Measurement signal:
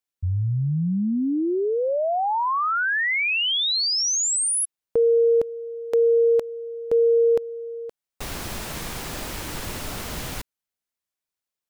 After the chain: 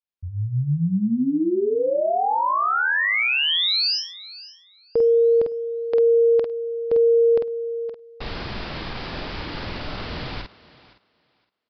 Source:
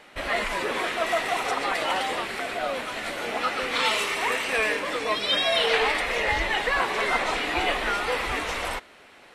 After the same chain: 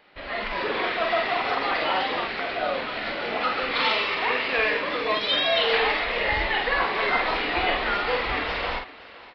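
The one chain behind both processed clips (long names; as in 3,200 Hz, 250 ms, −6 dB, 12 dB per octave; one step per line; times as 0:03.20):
automatic gain control gain up to 8 dB
double-tracking delay 48 ms −4.5 dB
on a send: feedback echo with a high-pass in the loop 515 ms, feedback 18%, high-pass 170 Hz, level −18.5 dB
on the sum: downsampling to 11,025 Hz
level −7.5 dB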